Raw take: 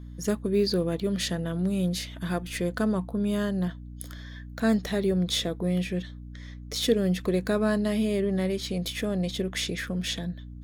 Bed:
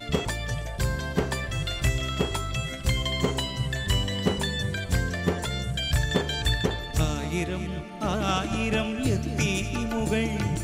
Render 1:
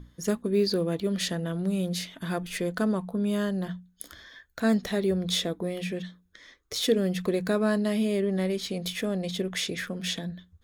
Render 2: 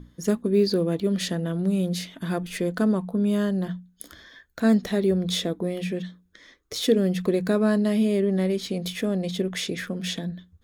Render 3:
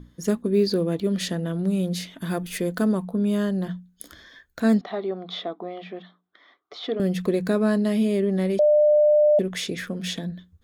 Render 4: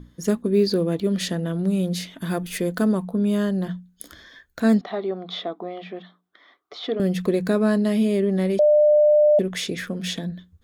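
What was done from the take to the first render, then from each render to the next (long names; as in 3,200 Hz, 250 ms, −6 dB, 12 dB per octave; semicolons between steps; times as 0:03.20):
mains-hum notches 60/120/180/240/300 Hz
parametric band 260 Hz +5 dB 2 octaves
0:02.19–0:03.05: high-shelf EQ 11,000 Hz +11.5 dB; 0:04.81–0:07.00: loudspeaker in its box 430–3,400 Hz, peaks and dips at 500 Hz −8 dB, 730 Hz +10 dB, 1,200 Hz +7 dB, 1,700 Hz −7 dB, 2,600 Hz −9 dB; 0:08.59–0:09.39: beep over 599 Hz −13.5 dBFS
level +1.5 dB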